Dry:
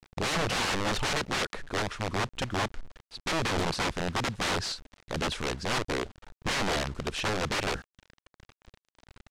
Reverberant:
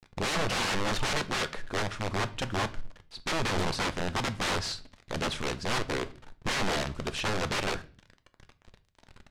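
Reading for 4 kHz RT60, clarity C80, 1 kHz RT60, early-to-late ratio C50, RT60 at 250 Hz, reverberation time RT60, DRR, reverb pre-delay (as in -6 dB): 0.40 s, 23.0 dB, 0.35 s, 18.5 dB, 0.65 s, 0.40 s, 10.5 dB, 4 ms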